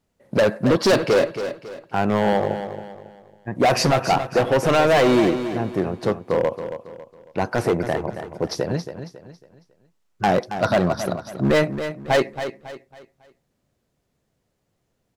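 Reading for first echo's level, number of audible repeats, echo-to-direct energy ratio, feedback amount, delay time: −10.0 dB, 3, −9.5 dB, 36%, 275 ms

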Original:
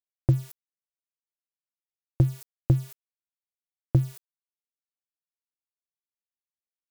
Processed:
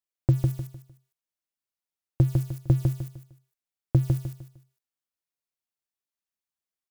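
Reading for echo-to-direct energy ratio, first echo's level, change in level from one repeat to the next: −3.5 dB, −4.0 dB, −10.0 dB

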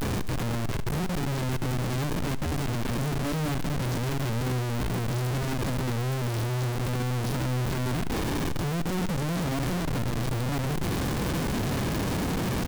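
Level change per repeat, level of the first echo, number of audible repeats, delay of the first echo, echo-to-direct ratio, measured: −8.5 dB, −15.5 dB, 2, 71 ms, −15.0 dB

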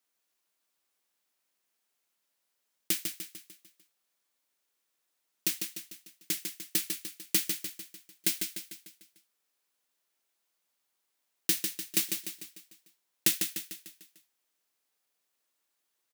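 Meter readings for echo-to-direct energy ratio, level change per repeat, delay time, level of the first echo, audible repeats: −5.0 dB, −6.0 dB, 149 ms, −6.0 dB, 5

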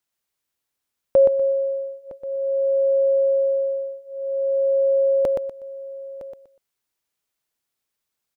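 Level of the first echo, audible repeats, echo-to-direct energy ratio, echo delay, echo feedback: −4.5 dB, 6, −4.0 dB, 122 ms, repeats not evenly spaced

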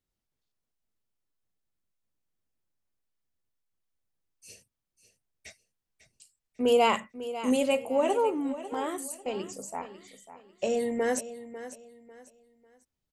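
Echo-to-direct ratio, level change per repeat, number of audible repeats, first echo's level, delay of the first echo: −13.0 dB, −10.5 dB, 3, −13.5 dB, 547 ms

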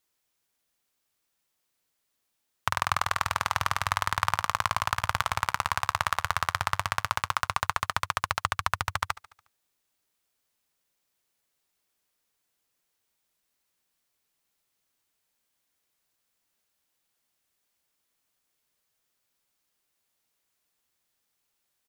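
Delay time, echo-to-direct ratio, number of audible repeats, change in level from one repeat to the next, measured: 72 ms, −17.5 dB, 4, −5.0 dB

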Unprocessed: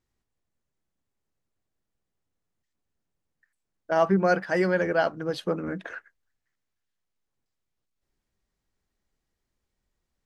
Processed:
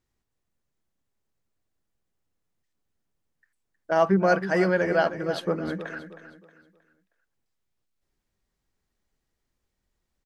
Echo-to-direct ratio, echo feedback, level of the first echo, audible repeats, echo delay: −11.5 dB, 35%, −12.0 dB, 3, 315 ms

